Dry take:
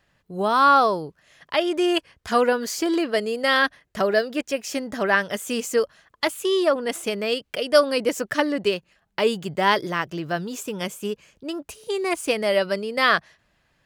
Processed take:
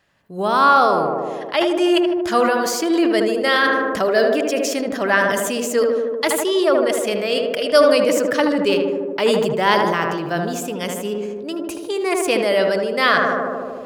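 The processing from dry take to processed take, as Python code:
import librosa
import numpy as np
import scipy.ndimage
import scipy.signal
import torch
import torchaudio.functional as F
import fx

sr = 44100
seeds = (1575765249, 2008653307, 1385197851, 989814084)

p1 = fx.low_shelf(x, sr, hz=79.0, db=-10.5)
p2 = p1 + fx.echo_tape(p1, sr, ms=77, feedback_pct=86, wet_db=-4.5, lp_hz=1300.0, drive_db=6.0, wow_cents=6, dry=0)
p3 = fx.sustainer(p2, sr, db_per_s=26.0)
y = p3 * librosa.db_to_amplitude(2.0)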